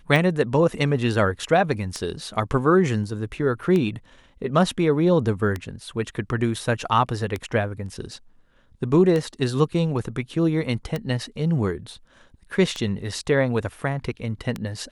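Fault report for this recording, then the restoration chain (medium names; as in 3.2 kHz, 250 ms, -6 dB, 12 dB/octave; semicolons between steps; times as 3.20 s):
tick 33 1/3 rpm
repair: de-click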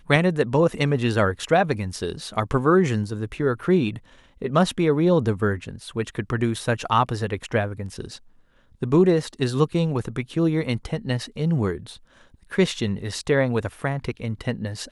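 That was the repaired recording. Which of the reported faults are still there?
nothing left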